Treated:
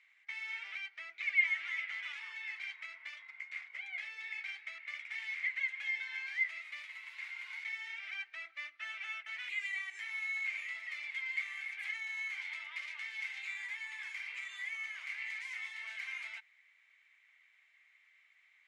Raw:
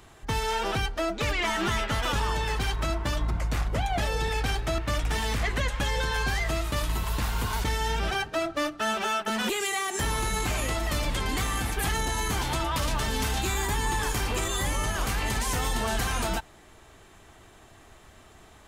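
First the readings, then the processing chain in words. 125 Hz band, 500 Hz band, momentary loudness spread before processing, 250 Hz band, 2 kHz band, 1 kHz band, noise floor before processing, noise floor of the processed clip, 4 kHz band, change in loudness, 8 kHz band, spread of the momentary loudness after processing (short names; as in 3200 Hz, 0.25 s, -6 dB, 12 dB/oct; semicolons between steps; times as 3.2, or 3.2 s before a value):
under -40 dB, under -40 dB, 2 LU, under -40 dB, -4.0 dB, -28.0 dB, -53 dBFS, -68 dBFS, -16.5 dB, -10.5 dB, -28.0 dB, 9 LU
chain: ladder band-pass 2200 Hz, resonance 90%; gain -4.5 dB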